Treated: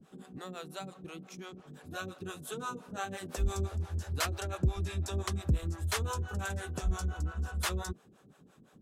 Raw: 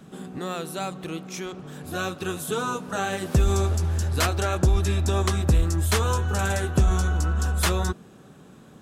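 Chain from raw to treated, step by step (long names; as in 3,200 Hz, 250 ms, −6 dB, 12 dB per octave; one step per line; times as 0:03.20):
two-band tremolo in antiphase 5.8 Hz, depth 100%, crossover 440 Hz
level −7 dB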